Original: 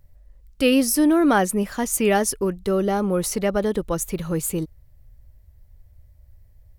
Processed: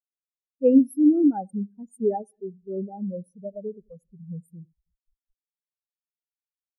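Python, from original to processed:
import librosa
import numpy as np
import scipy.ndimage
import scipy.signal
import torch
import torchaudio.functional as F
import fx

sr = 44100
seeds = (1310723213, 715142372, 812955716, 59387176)

p1 = fx.peak_eq(x, sr, hz=320.0, db=-5.5, octaves=0.38)
p2 = fx.echo_split(p1, sr, split_hz=1800.0, low_ms=89, high_ms=216, feedback_pct=52, wet_db=-12)
p3 = fx.schmitt(p2, sr, flips_db=-36.0)
p4 = p2 + F.gain(torch.from_numpy(p3), -5.5).numpy()
p5 = fx.high_shelf(p4, sr, hz=5900.0, db=7.5)
p6 = fx.spectral_expand(p5, sr, expansion=4.0)
y = F.gain(torch.from_numpy(p6), -3.5).numpy()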